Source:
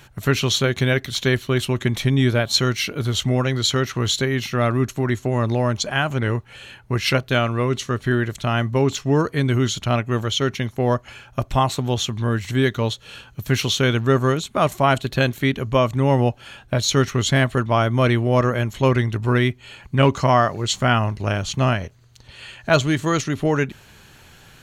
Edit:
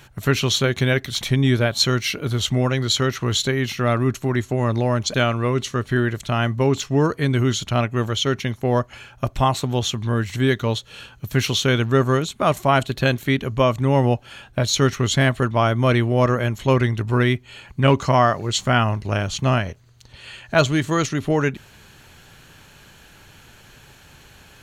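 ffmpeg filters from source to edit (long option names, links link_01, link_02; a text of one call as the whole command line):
ffmpeg -i in.wav -filter_complex "[0:a]asplit=3[link_01][link_02][link_03];[link_01]atrim=end=1.212[link_04];[link_02]atrim=start=1.948:end=5.882[link_05];[link_03]atrim=start=7.288[link_06];[link_04][link_05]acrossfade=duration=0.004:curve1=hsin:curve2=hsin[link_07];[link_07][link_06]acrossfade=duration=0.004:curve1=hsin:curve2=hsin" out.wav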